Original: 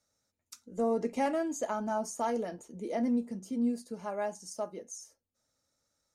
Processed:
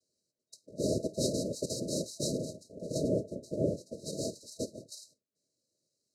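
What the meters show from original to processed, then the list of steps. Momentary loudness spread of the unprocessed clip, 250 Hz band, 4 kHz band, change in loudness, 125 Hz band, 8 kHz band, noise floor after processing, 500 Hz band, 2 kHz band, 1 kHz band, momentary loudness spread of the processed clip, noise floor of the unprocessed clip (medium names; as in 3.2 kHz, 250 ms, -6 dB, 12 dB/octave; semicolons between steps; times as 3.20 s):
13 LU, -3.5 dB, +11.0 dB, -1.0 dB, +12.0 dB, +4.5 dB, under -85 dBFS, -0.5 dB, under -40 dB, under -20 dB, 12 LU, -85 dBFS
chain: noise-vocoded speech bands 2; FFT band-reject 660–3800 Hz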